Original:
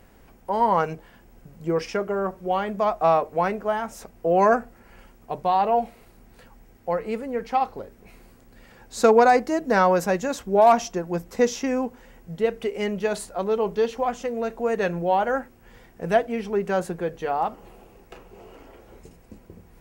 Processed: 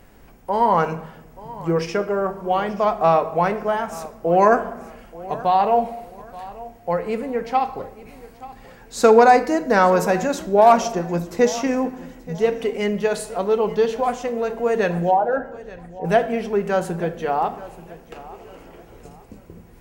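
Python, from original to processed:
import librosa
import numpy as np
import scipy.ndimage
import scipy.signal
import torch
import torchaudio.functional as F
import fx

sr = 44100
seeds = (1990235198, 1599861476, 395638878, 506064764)

y = fx.envelope_sharpen(x, sr, power=2.0, at=(15.1, 16.04), fade=0.02)
y = fx.echo_feedback(y, sr, ms=880, feedback_pct=33, wet_db=-18.5)
y = fx.room_shoebox(y, sr, seeds[0], volume_m3=400.0, walls='mixed', distance_m=0.38)
y = y * 10.0 ** (3.0 / 20.0)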